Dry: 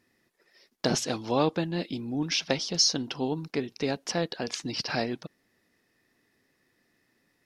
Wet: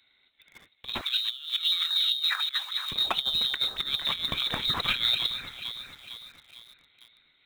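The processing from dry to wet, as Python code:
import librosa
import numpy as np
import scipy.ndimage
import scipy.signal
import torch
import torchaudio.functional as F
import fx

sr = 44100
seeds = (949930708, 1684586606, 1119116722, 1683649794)

p1 = x + fx.echo_alternate(x, sr, ms=227, hz=1700.0, feedback_pct=68, wet_db=-10, dry=0)
p2 = fx.freq_invert(p1, sr, carrier_hz=4000)
p3 = fx.quant_companded(p2, sr, bits=4)
p4 = p2 + (p3 * librosa.db_to_amplitude(-6.0))
p5 = fx.transient(p4, sr, attack_db=5, sustain_db=1)
p6 = fx.over_compress(p5, sr, threshold_db=-27.0, ratio=-0.5)
y = fx.highpass(p6, sr, hz=1300.0, slope=24, at=(1.01, 2.92))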